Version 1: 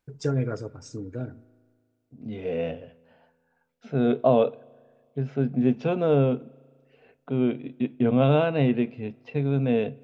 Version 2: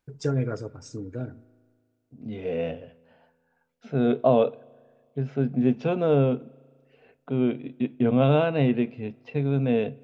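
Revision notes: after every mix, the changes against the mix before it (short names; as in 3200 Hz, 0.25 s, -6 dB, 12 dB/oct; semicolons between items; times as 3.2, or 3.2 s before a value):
none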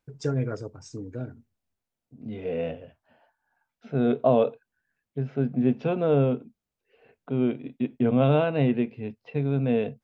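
second voice: add air absorption 92 m; reverb: off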